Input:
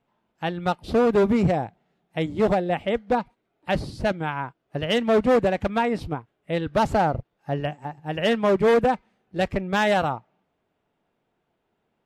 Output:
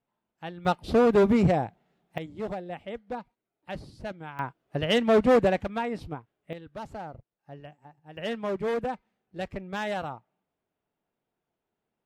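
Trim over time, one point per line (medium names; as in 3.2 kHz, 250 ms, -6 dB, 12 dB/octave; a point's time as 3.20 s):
-11 dB
from 0.65 s -1 dB
from 2.18 s -13 dB
from 4.39 s -1 dB
from 5.61 s -7.5 dB
from 6.53 s -18 dB
from 8.17 s -10.5 dB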